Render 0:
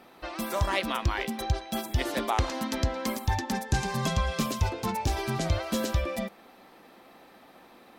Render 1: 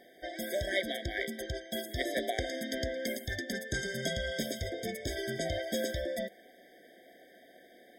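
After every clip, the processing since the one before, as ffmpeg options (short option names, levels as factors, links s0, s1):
-af "bass=f=250:g=-13,treble=f=4000:g=-1,afftfilt=real='re*eq(mod(floor(b*sr/1024/770),2),0)':imag='im*eq(mod(floor(b*sr/1024/770),2),0)':win_size=1024:overlap=0.75"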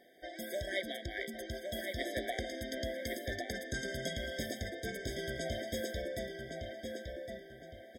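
-filter_complex "[0:a]asplit=2[s0][s1];[s1]adelay=1112,lowpass=f=3900:p=1,volume=0.631,asplit=2[s2][s3];[s3]adelay=1112,lowpass=f=3900:p=1,volume=0.39,asplit=2[s4][s5];[s5]adelay=1112,lowpass=f=3900:p=1,volume=0.39,asplit=2[s6][s7];[s7]adelay=1112,lowpass=f=3900:p=1,volume=0.39,asplit=2[s8][s9];[s9]adelay=1112,lowpass=f=3900:p=1,volume=0.39[s10];[s0][s2][s4][s6][s8][s10]amix=inputs=6:normalize=0,volume=0.562"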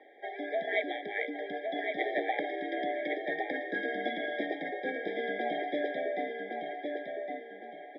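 -af "highpass=f=170:t=q:w=0.5412,highpass=f=170:t=q:w=1.307,lowpass=f=2900:t=q:w=0.5176,lowpass=f=2900:t=q:w=0.7071,lowpass=f=2900:t=q:w=1.932,afreqshift=69,volume=2.11"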